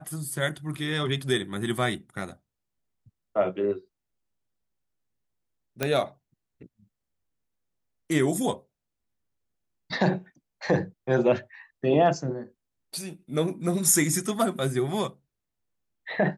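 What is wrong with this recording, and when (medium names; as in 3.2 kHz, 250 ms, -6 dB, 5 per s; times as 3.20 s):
5.83 s: pop -10 dBFS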